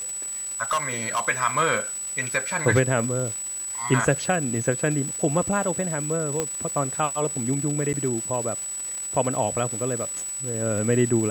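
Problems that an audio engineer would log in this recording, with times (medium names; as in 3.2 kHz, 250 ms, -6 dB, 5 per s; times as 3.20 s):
crackle 600 per s -32 dBFS
whine 7.9 kHz -29 dBFS
0.63–1.20 s: clipped -19.5 dBFS
6.40 s: pop -11 dBFS
7.93–7.94 s: dropout 8.6 ms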